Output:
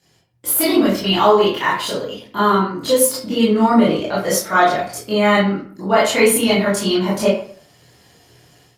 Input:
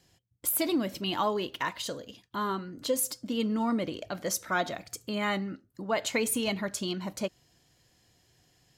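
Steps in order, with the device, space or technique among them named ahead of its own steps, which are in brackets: far-field microphone of a smart speaker (reverberation RT60 0.55 s, pre-delay 18 ms, DRR -9 dB; high-pass 110 Hz 12 dB/octave; level rider gain up to 9.5 dB; Opus 48 kbps 48 kHz)

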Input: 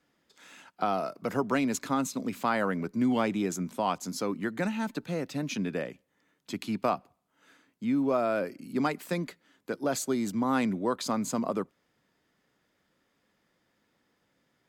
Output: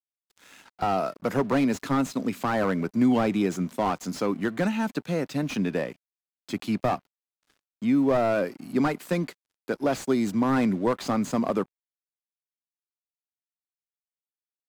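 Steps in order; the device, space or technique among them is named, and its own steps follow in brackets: early transistor amplifier (crossover distortion -55.5 dBFS; slew-rate limiter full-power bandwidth 42 Hz); trim +5.5 dB

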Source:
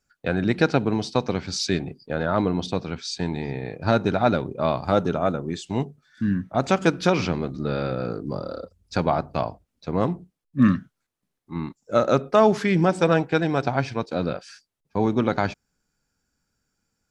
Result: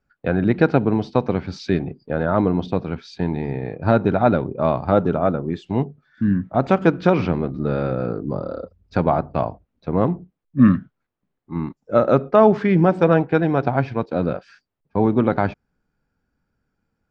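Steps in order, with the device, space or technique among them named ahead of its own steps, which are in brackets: phone in a pocket (low-pass 3.6 kHz 12 dB/octave; treble shelf 2.3 kHz -11.5 dB); trim +4.5 dB

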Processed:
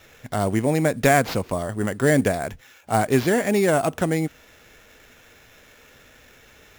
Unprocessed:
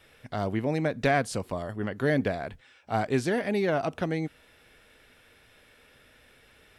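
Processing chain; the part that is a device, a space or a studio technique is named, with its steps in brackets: early companding sampler (sample-rate reducer 9.1 kHz, jitter 0%; companded quantiser 8-bit); trim +7 dB

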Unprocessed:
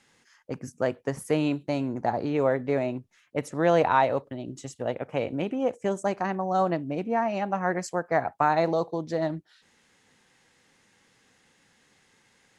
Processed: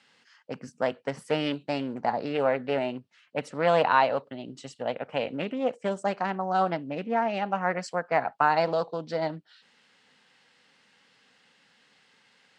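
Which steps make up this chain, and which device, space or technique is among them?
full-range speaker at full volume (loudspeaker Doppler distortion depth 0.26 ms; cabinet simulation 180–8200 Hz, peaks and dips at 340 Hz -8 dB, 1.4 kHz +3 dB, 2.9 kHz +6 dB, 4.4 kHz +5 dB, 6.6 kHz -8 dB)

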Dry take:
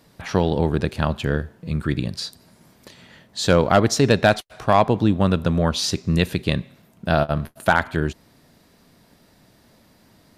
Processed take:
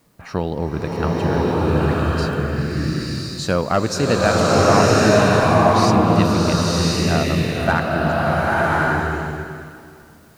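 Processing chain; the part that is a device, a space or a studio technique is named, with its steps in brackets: peaking EQ 1.2 kHz +5.5 dB 0.23 oct; band-stop 3.4 kHz, Q 5.1; plain cassette with noise reduction switched in (tape noise reduction on one side only decoder only; wow and flutter; white noise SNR 40 dB); swelling reverb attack 1100 ms, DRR -7 dB; trim -3.5 dB

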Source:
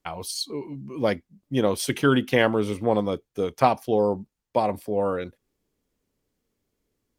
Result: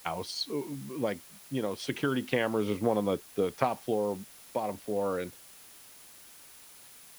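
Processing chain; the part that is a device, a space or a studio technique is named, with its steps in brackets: medium wave at night (band-pass 110–4400 Hz; compression, threshold -22 dBFS, peak gain reduction 9.5 dB; tremolo 0.33 Hz, depth 46%; whistle 10 kHz -58 dBFS; white noise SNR 20 dB)

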